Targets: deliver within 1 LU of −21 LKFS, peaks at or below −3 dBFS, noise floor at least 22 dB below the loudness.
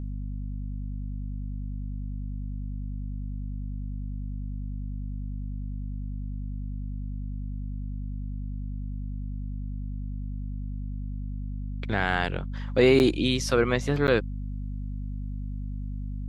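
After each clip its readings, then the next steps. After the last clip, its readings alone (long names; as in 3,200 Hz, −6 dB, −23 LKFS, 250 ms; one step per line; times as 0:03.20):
number of dropouts 2; longest dropout 9.5 ms; mains hum 50 Hz; hum harmonics up to 250 Hz; level of the hum −30 dBFS; integrated loudness −31.0 LKFS; sample peak −7.0 dBFS; target loudness −21.0 LKFS
→ repair the gap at 0:12.99/0:14.07, 9.5 ms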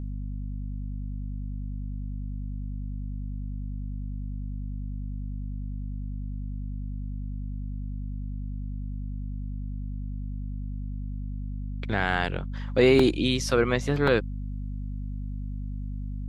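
number of dropouts 0; mains hum 50 Hz; hum harmonics up to 250 Hz; level of the hum −30 dBFS
→ mains-hum notches 50/100/150/200/250 Hz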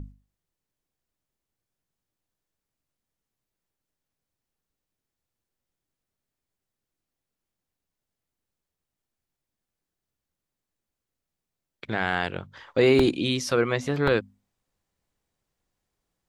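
mains hum none found; integrated loudness −24.5 LKFS; sample peak −7.0 dBFS; target loudness −21.0 LKFS
→ level +3.5 dB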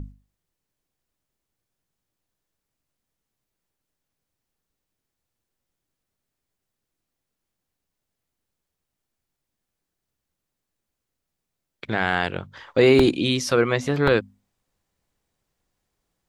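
integrated loudness −21.0 LKFS; sample peak −3.5 dBFS; background noise floor −83 dBFS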